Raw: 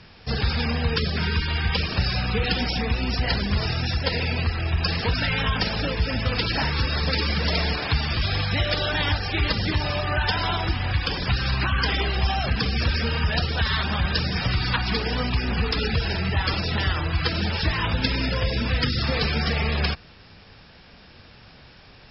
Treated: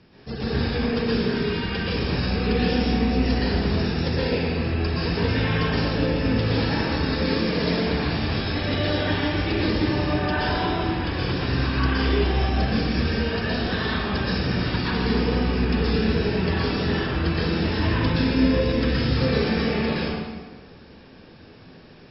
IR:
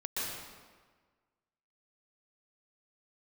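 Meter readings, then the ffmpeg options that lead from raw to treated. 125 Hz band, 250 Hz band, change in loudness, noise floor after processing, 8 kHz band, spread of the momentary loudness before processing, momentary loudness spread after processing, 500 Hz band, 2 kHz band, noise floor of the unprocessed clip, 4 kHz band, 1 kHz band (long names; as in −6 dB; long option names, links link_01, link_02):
0.0 dB, +7.0 dB, +0.5 dB, −46 dBFS, can't be measured, 2 LU, 3 LU, +6.0 dB, −2.0 dB, −49 dBFS, −4.0 dB, 0.0 dB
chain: -filter_complex "[0:a]equalizer=frequency=300:width=0.7:gain=12.5[link_01];[1:a]atrim=start_sample=2205[link_02];[link_01][link_02]afir=irnorm=-1:irlink=0,volume=-8dB"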